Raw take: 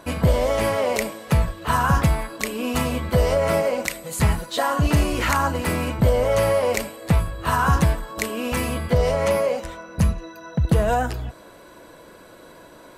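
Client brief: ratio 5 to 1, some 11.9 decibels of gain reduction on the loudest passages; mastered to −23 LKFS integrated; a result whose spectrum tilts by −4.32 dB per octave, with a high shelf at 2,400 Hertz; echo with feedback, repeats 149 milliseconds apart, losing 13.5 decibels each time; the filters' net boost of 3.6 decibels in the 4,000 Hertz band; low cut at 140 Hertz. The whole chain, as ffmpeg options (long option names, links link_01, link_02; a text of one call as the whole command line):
ffmpeg -i in.wav -af "highpass=140,highshelf=frequency=2400:gain=-3,equalizer=frequency=4000:width_type=o:gain=7.5,acompressor=threshold=-30dB:ratio=5,aecho=1:1:149|298:0.211|0.0444,volume=10dB" out.wav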